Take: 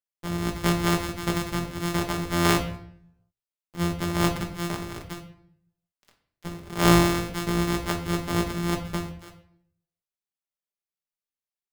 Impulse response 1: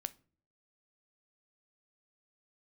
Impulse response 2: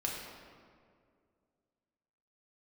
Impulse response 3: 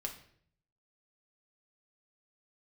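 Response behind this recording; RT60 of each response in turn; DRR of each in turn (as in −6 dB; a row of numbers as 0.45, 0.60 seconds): 3; non-exponential decay, 2.2 s, 0.60 s; 13.5, −3.0, 2.0 decibels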